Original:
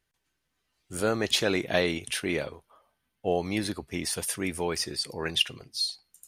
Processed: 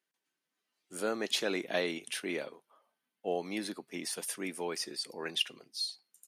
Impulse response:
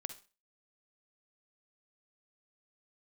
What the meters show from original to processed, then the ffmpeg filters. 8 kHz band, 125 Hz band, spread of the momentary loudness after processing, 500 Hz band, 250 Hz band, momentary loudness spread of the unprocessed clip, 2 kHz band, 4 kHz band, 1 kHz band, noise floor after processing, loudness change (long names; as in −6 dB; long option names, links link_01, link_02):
−6.5 dB, −15.0 dB, 8 LU, −6.5 dB, −7.5 dB, 8 LU, −6.5 dB, −6.5 dB, −6.5 dB, below −85 dBFS, −6.5 dB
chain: -af "highpass=frequency=200:width=0.5412,highpass=frequency=200:width=1.3066,aresample=32000,aresample=44100,volume=-6.5dB"